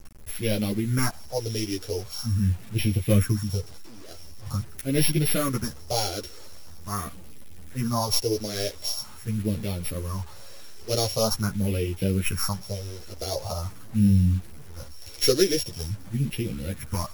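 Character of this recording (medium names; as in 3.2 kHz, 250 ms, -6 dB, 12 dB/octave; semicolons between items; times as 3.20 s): a buzz of ramps at a fixed pitch in blocks of 8 samples; phasing stages 4, 0.44 Hz, lowest notch 160–1200 Hz; a quantiser's noise floor 8-bit, dither none; a shimmering, thickened sound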